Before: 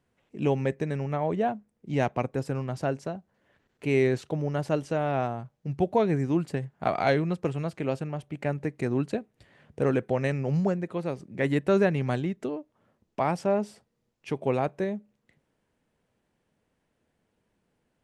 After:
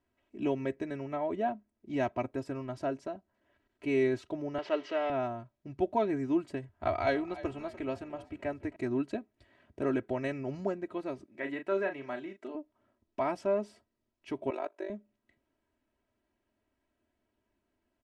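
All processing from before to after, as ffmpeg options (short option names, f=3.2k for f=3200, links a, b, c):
-filter_complex "[0:a]asettb=1/sr,asplit=3[a][b][c];[a]atrim=end=4.584[d];[b]atrim=start=4.58:end=5.1,asetpts=PTS-STARTPTS,afade=t=in:d=0.004:c=qsin,afade=t=out:st=0.516:d=0.004:c=qsin,aeval=exprs='val(0)+0.5*0.0119*sgn(val(0))':c=same,highpass=390,equalizer=f=420:t=q:w=4:g=5,equalizer=f=1.2k:t=q:w=4:g=3,equalizer=f=2k:t=q:w=4:g=7,equalizer=f=3k:t=q:w=4:g=8,lowpass=f=5k:w=0.5412,lowpass=f=5k:w=1.3066[e];[c]atrim=start=5.096[f];[d][e]acrossfade=d=0.004:c1=hsin:c2=qsin[g];[g][f]acrossfade=d=0.004:c1=qsin:c2=hsin,asettb=1/sr,asplit=3[h][i][j];[h]atrim=end=6.694[k];[i]atrim=start=6.69:end=8.76,asetpts=PTS-STARTPTS,afade=t=in:d=0.004:c=qsin,afade=t=out:st=2.066:d=0.004:c=qsin,lowshelf=f=120:t=q:w=3:g=7.5,asplit=5[l][m][n][o][p];[m]adelay=294,afreqshift=48,volume=-17dB[q];[n]adelay=588,afreqshift=96,volume=-24.1dB[r];[o]adelay=882,afreqshift=144,volume=-31.3dB[s];[p]adelay=1176,afreqshift=192,volume=-38.4dB[t];[l][q][r][s][t]amix=inputs=5:normalize=0,atrim=end_sample=91287[u];[j]atrim=start=8.756[v];[k][u]acrossfade=d=0.004:c1=hsin:c2=qsin[w];[w][v]acrossfade=d=0.004:c1=qsin:c2=hsin,asettb=1/sr,asplit=3[x][y][z];[x]atrim=end=11.254[aa];[y]atrim=start=11.25:end=12.55,asetpts=PTS-STARTPTS,afade=t=in:d=0.004:c=qsin,afade=t=out:st=1.296:d=0.004:c=qsin,acrossover=split=3000[ab][ac];[ac]acompressor=threshold=-58dB:ratio=4:attack=1:release=60[ad];[ab][ad]amix=inputs=2:normalize=0,highpass=f=720:p=1,asplit=2[ae][af];[af]adelay=36,volume=-7.5dB[ag];[ae][ag]amix=inputs=2:normalize=0,atrim=end_sample=57330[ah];[z]atrim=start=12.546[ai];[aa][ah]acrossfade=d=0.004:c1=hsin:c2=qsin[aj];[aj][ai]acrossfade=d=0.004:c1=qsin:c2=hsin,asettb=1/sr,asplit=3[ak][al][am];[ak]atrim=end=14.504[an];[al]atrim=start=14.5:end=14.9,asetpts=PTS-STARTPTS,afade=t=in:d=0.004:c=qsin,afade=t=out:st=0.396:d=0.004:c=qsin,highpass=f=360:w=0.5412,highpass=f=360:w=1.3066,tremolo=f=49:d=0.889[ao];[am]atrim=start=14.896[ap];[an][ao]acrossfade=d=0.004:c1=hsin:c2=qsin[aq];[aq][ap]acrossfade=d=0.004:c1=qsin:c2=hsin,highshelf=f=7.1k:g=-10.5,aecho=1:1:3.1:0.83,volume=-7dB"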